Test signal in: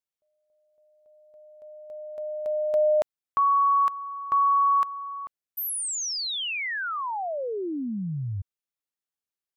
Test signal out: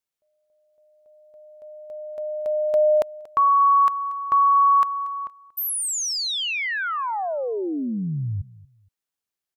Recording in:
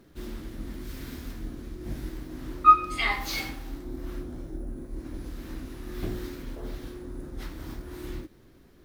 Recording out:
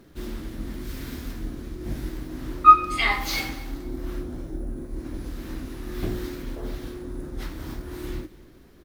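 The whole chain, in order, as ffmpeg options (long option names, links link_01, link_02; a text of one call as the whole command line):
ffmpeg -i in.wav -af "aecho=1:1:234|468:0.1|0.027,volume=4dB" out.wav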